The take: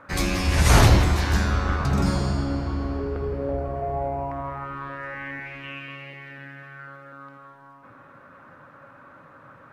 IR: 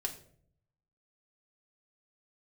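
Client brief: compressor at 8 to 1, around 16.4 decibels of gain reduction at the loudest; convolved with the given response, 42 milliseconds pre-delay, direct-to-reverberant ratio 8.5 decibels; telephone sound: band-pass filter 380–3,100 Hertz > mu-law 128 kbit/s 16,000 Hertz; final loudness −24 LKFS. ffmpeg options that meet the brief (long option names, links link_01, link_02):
-filter_complex "[0:a]acompressor=threshold=-28dB:ratio=8,asplit=2[link_01][link_02];[1:a]atrim=start_sample=2205,adelay=42[link_03];[link_02][link_03]afir=irnorm=-1:irlink=0,volume=-9.5dB[link_04];[link_01][link_04]amix=inputs=2:normalize=0,highpass=380,lowpass=3100,volume=12.5dB" -ar 16000 -c:a pcm_mulaw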